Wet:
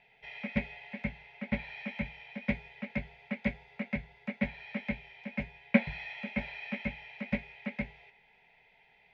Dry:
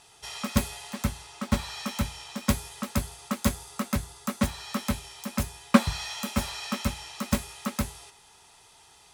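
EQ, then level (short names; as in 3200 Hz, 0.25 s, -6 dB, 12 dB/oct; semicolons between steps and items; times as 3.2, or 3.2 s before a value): synth low-pass 2200 Hz, resonance Q 7.7; air absorption 230 m; fixed phaser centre 320 Hz, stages 6; -4.5 dB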